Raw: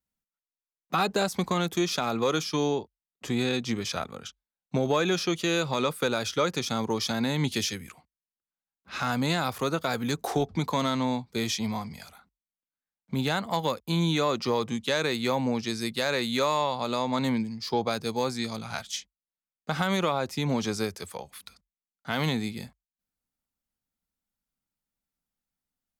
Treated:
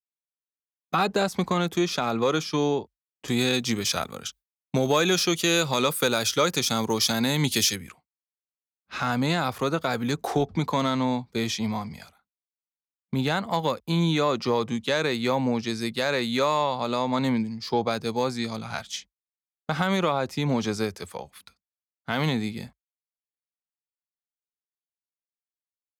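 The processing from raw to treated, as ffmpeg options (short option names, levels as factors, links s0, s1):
-filter_complex "[0:a]asettb=1/sr,asplit=3[s0][s1][s2];[s0]atrim=end=3.284[s3];[s1]atrim=start=3.28:end=7.76,asetpts=PTS-STARTPTS,afade=t=in:d=0.004:c=qsin,afade=t=out:st=4.476:d=0.004:c=qsin,aemphasis=mode=production:type=75kf[s4];[s2]atrim=start=7.756[s5];[s3][s4]acrossfade=d=0.004:c1=hsin:c2=qsin[s6];[s6][s5]acrossfade=d=0.004:c1=qsin:c2=hsin,agate=range=0.0224:threshold=0.00794:ratio=3:detection=peak,highshelf=f=4700:g=-5.5,volume=1.33"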